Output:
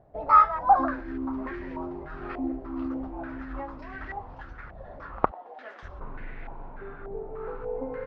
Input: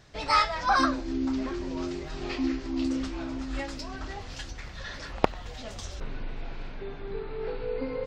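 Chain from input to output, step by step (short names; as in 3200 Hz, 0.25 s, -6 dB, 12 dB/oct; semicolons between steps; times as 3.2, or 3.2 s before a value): 5.31–5.83 HPF 320 Hz 24 dB/oct; stepped low-pass 3.4 Hz 690–1900 Hz; gain -4 dB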